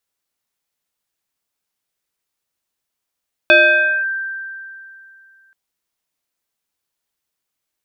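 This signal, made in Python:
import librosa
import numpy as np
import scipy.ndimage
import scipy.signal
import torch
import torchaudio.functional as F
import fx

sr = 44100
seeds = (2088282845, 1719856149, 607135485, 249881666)

y = fx.fm2(sr, length_s=2.03, level_db=-5.0, carrier_hz=1570.0, ratio=0.61, index=1.4, index_s=0.55, decay_s=2.63, shape='linear')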